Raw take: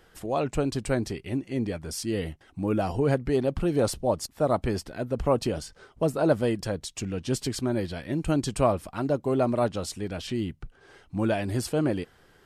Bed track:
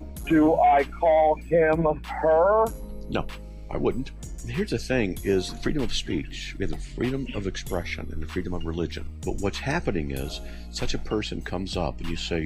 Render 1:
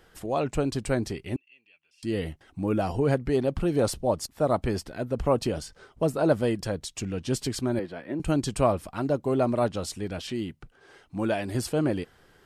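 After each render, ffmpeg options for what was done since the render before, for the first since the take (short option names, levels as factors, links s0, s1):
-filter_complex "[0:a]asettb=1/sr,asplit=3[s0][s1][s2];[s0]atrim=end=1.364[s3];[s1]atrim=start=1.36:end=2.03,asetpts=PTS-STARTPTS,afade=t=in:d=0.004:c=qsin,afade=t=out:st=0.666:d=0.004:c=qsin,bandpass=f=2700:t=q:w=19[s4];[s2]atrim=start=2.026[s5];[s3][s4]acrossfade=d=0.004:c1=hsin:c2=qsin[s6];[s6][s5]acrossfade=d=0.004:c1=qsin:c2=hsin,asettb=1/sr,asplit=3[s7][s8][s9];[s7]atrim=end=7.794[s10];[s8]atrim=start=7.79:end=8.2,asetpts=PTS-STARTPTS,afade=t=in:d=0.004:c=qsin,afade=t=out:st=0.406:d=0.004:c=qsin,acrossover=split=200 2300:gain=0.126 1 0.178[s11][s12][s13];[s11][s12][s13]amix=inputs=3:normalize=0[s14];[s9]atrim=start=8.196[s15];[s10][s14]acrossfade=d=0.004:c1=hsin:c2=qsin[s16];[s16][s15]acrossfade=d=0.004:c1=qsin:c2=hsin,asettb=1/sr,asplit=3[s17][s18][s19];[s17]atrim=end=10.194[s20];[s18]atrim=start=10.19:end=11.55,asetpts=PTS-STARTPTS,afade=t=in:d=0.004:c=qsin,afade=t=out:st=1.356:d=0.004:c=qsin,lowshelf=f=120:g=-10[s21];[s19]atrim=start=11.546[s22];[s20][s21]acrossfade=d=0.004:c1=hsin:c2=qsin[s23];[s23][s22]acrossfade=d=0.004:c1=qsin:c2=hsin"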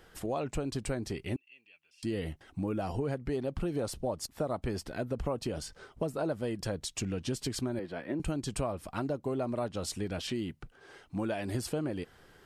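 -af "acompressor=threshold=0.0316:ratio=6"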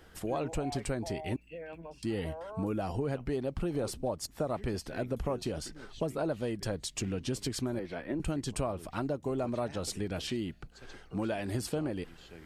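-filter_complex "[1:a]volume=0.0631[s0];[0:a][s0]amix=inputs=2:normalize=0"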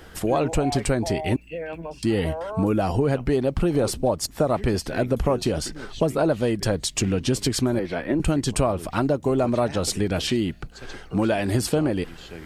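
-af "volume=3.76"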